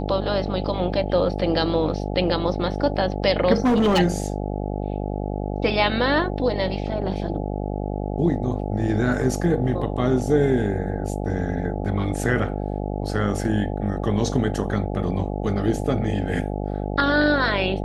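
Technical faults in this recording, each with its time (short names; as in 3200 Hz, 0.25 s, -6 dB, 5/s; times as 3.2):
buzz 50 Hz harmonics 17 -27 dBFS
3.56–4 clipped -14.5 dBFS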